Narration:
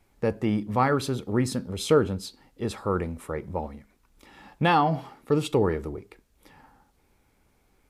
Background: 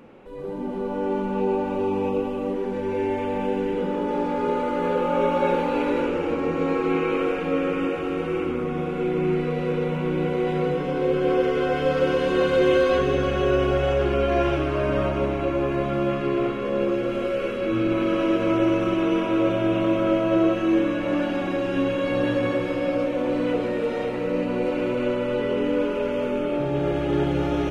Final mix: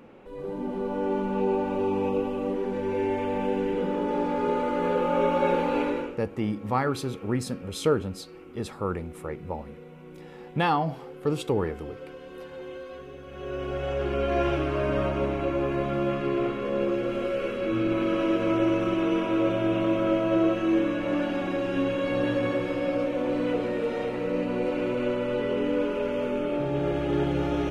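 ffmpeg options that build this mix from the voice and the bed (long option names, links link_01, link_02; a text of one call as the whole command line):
ffmpeg -i stem1.wav -i stem2.wav -filter_complex "[0:a]adelay=5950,volume=-3dB[link_01];[1:a]volume=16dB,afade=type=out:start_time=5.8:duration=0.39:silence=0.112202,afade=type=in:start_time=13.26:duration=1.21:silence=0.125893[link_02];[link_01][link_02]amix=inputs=2:normalize=0" out.wav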